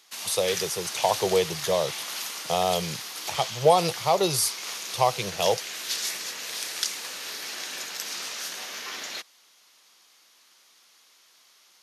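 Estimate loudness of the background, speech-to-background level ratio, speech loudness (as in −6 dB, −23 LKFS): −32.0 LKFS, 6.5 dB, −25.5 LKFS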